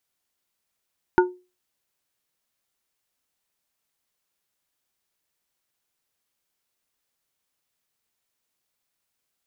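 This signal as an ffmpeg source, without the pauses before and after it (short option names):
-f lavfi -i "aevalsrc='0.282*pow(10,-3*t/0.3)*sin(2*PI*362*t)+0.211*pow(10,-3*t/0.158)*sin(2*PI*905*t)+0.158*pow(10,-3*t/0.114)*sin(2*PI*1448*t)':d=0.89:s=44100"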